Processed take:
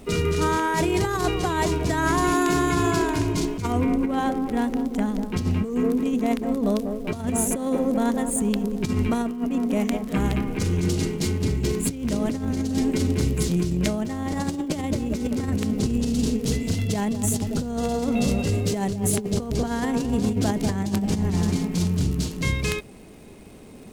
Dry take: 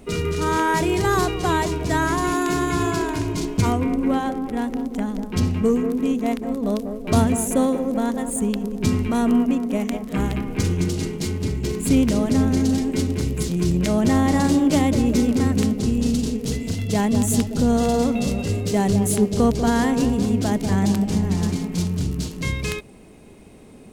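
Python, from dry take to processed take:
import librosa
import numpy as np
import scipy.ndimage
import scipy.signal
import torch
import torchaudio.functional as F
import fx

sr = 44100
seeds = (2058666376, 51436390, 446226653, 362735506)

y = fx.over_compress(x, sr, threshold_db=-21.0, ratio=-0.5)
y = fx.dmg_crackle(y, sr, seeds[0], per_s=460.0, level_db=-44.0)
y = F.gain(torch.from_numpy(y), -1.0).numpy()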